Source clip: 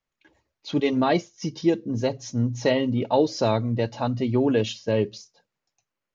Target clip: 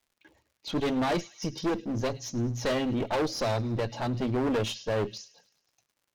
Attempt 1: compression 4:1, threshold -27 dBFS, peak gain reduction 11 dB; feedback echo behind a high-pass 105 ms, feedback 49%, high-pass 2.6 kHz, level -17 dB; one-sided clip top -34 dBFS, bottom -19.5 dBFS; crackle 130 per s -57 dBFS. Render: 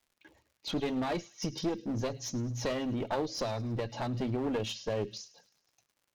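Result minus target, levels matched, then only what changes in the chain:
compression: peak gain reduction +11 dB
remove: compression 4:1, threshold -27 dBFS, peak gain reduction 11 dB

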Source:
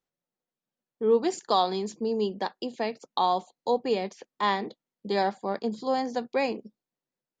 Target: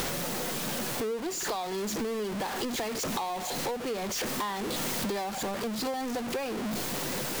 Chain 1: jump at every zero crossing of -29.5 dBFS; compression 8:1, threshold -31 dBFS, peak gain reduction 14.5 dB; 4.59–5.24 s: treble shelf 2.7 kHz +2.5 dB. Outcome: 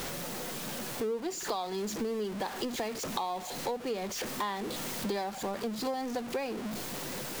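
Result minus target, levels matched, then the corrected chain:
jump at every zero crossing: distortion -7 dB
jump at every zero crossing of -20 dBFS; compression 8:1, threshold -31 dBFS, peak gain reduction 15.5 dB; 4.59–5.24 s: treble shelf 2.7 kHz +2.5 dB

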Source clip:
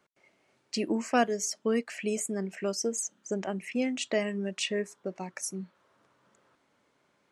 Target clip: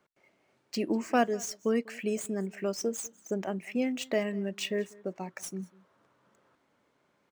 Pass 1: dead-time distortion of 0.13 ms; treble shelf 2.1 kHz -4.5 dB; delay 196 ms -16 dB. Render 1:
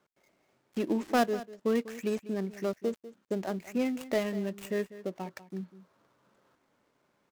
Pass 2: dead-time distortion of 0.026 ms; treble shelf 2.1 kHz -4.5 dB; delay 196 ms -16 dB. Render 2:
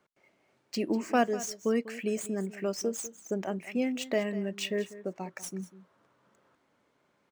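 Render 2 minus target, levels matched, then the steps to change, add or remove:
echo-to-direct +7.5 dB
change: delay 196 ms -23.5 dB

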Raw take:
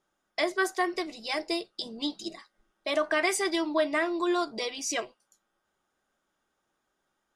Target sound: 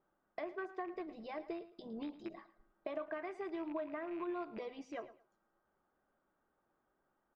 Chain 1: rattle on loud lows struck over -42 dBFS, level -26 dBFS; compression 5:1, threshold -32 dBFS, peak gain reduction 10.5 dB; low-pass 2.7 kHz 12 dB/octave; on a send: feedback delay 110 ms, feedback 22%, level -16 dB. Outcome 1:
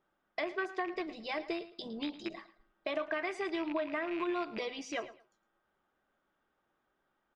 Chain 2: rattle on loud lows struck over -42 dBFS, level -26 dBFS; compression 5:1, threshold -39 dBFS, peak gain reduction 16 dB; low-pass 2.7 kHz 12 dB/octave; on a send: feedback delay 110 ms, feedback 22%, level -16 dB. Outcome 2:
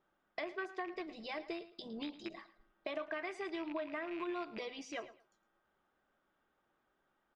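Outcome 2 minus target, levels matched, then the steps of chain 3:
2 kHz band +5.0 dB
rattle on loud lows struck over -42 dBFS, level -26 dBFS; compression 5:1, threshold -39 dBFS, peak gain reduction 16 dB; low-pass 1.3 kHz 12 dB/octave; on a send: feedback delay 110 ms, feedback 22%, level -16 dB

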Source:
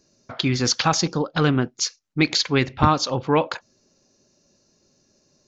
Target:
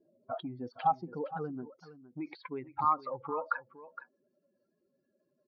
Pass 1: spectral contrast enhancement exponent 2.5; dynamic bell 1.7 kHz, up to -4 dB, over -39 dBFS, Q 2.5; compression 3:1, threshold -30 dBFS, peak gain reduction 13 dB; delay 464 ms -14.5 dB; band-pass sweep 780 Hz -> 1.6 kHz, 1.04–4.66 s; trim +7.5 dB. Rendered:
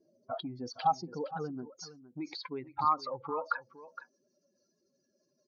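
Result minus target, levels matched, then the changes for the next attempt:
4 kHz band +11.0 dB
add after compression: low-pass 2.9 kHz 24 dB/octave

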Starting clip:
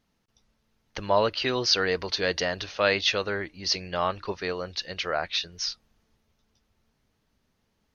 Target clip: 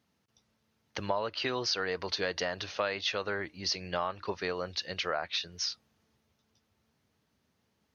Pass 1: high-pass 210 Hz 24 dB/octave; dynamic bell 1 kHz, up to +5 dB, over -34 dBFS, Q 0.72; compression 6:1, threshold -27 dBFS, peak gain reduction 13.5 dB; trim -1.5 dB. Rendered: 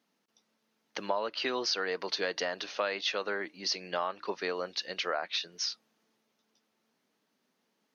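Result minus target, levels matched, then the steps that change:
125 Hz band -10.5 dB
change: high-pass 74 Hz 24 dB/octave

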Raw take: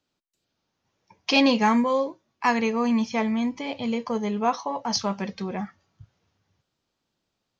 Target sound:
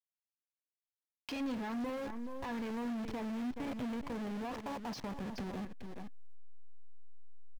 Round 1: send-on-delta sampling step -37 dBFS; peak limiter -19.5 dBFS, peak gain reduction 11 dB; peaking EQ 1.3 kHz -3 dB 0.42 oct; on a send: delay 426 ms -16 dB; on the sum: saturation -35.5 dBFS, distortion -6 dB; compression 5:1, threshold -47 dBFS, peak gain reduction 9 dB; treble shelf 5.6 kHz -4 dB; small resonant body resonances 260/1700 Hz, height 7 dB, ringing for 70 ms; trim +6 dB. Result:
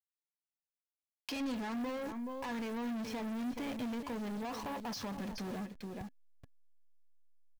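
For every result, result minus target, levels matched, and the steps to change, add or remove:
send-on-delta sampling: distortion -8 dB; 8 kHz band +5.0 dB
change: send-on-delta sampling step -29 dBFS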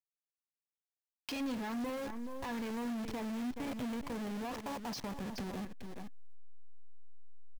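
8 kHz band +5.5 dB
change: treble shelf 5.6 kHz -13.5 dB

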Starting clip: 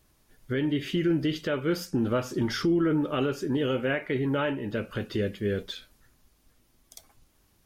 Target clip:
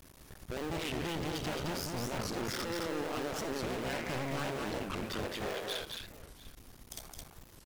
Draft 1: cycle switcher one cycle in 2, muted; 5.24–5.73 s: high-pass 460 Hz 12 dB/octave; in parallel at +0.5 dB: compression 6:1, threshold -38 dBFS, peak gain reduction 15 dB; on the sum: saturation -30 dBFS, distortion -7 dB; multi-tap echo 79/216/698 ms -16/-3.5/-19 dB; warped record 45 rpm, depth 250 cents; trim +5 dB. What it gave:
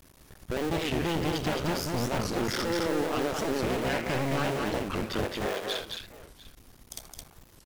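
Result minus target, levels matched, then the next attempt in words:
saturation: distortion -4 dB
cycle switcher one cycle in 2, muted; 5.24–5.73 s: high-pass 460 Hz 12 dB/octave; in parallel at +0.5 dB: compression 6:1, threshold -38 dBFS, peak gain reduction 15 dB; on the sum: saturation -39 dBFS, distortion -3 dB; multi-tap echo 79/216/698 ms -16/-3.5/-19 dB; warped record 45 rpm, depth 250 cents; trim +5 dB

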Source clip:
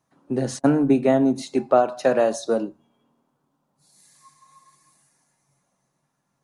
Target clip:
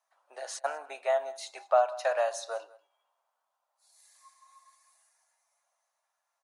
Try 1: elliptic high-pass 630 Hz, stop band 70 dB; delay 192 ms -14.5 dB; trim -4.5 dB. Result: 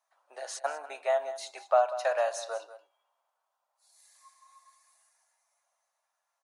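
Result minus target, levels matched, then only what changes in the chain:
echo-to-direct +7.5 dB
change: delay 192 ms -22 dB

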